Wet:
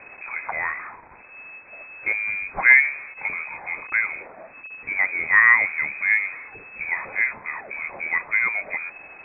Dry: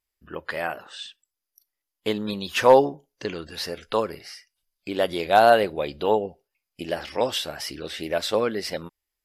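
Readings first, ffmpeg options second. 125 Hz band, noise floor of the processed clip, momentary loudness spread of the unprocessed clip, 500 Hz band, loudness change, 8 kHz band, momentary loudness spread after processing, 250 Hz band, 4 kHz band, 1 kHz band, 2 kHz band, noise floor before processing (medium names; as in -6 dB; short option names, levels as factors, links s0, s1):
under -10 dB, -46 dBFS, 20 LU, -21.0 dB, +3.0 dB, under -40 dB, 24 LU, under -15 dB, under -40 dB, -7.5 dB, +14.5 dB, -85 dBFS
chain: -af "aeval=exprs='val(0)+0.5*0.0282*sgn(val(0))':c=same,lowpass=f=2200:t=q:w=0.5098,lowpass=f=2200:t=q:w=0.6013,lowpass=f=2200:t=q:w=0.9,lowpass=f=2200:t=q:w=2.563,afreqshift=-2600"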